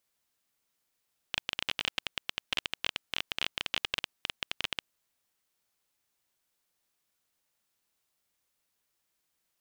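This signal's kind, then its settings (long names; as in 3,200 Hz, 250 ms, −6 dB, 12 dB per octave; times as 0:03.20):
Geiger counter clicks 18 per second −12 dBFS 3.64 s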